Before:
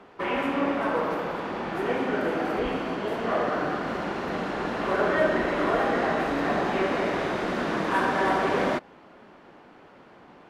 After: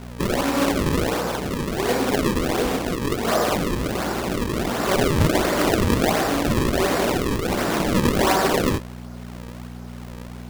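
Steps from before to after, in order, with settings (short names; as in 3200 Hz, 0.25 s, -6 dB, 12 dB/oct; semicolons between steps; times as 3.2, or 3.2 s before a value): buzz 60 Hz, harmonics 4, -41 dBFS -1 dB/oct; decimation with a swept rate 35×, swing 160% 1.4 Hz; gain +5 dB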